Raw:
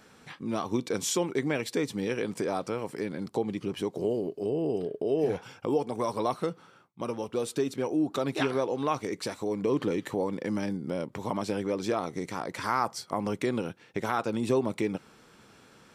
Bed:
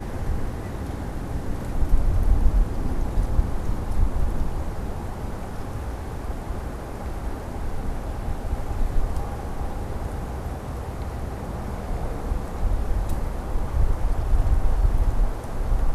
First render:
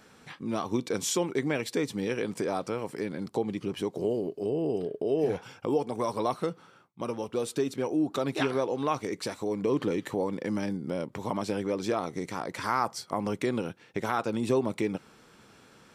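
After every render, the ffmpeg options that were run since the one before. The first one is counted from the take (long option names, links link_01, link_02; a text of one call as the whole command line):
ffmpeg -i in.wav -af anull out.wav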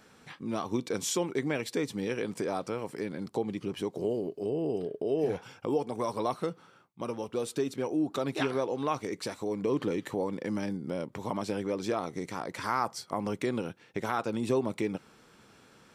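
ffmpeg -i in.wav -af "volume=-2dB" out.wav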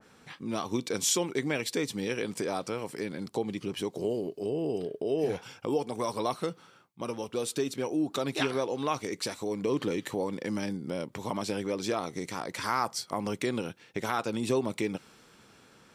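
ffmpeg -i in.wav -af "adynamicequalizer=threshold=0.00316:dfrequency=2100:dqfactor=0.7:tfrequency=2100:tqfactor=0.7:attack=5:release=100:ratio=0.375:range=3:mode=boostabove:tftype=highshelf" out.wav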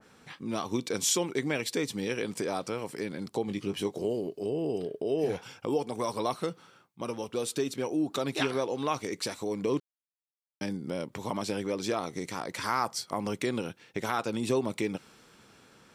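ffmpeg -i in.wav -filter_complex "[0:a]asettb=1/sr,asplit=3[link_01][link_02][link_03];[link_01]atrim=end=3.464[link_04];[link_02]atrim=start=3.46:end=4.02,asetpts=PTS-STARTPTS,afade=type=in:duration=0.004:curve=qsin,afade=type=out:start_time=0.556:duration=0.004:curve=qsin,asplit=2[link_05][link_06];[link_06]adelay=20,volume=-7.5dB[link_07];[link_05][link_07]amix=inputs=2:normalize=0,atrim=end_sample=24696[link_08];[link_03]atrim=start=4.016[link_09];[link_04][link_08]acrossfade=duration=0.004:curve1=hsin:curve2=qsin[link_10];[link_10][link_09]acrossfade=duration=0.004:curve1=qsin:curve2=hsin,asplit=3[link_11][link_12][link_13];[link_11]atrim=end=9.8,asetpts=PTS-STARTPTS,afade=type=out:start_time=9.796:duration=0.004:curve=hsin[link_14];[link_12]atrim=start=9.8:end=10.61,asetpts=PTS-STARTPTS,volume=0[link_15];[link_13]atrim=start=10.61,asetpts=PTS-STARTPTS,afade=type=in:duration=0.004:curve=hsin[link_16];[link_14][link_15][link_16]concat=n=3:v=0:a=1" out.wav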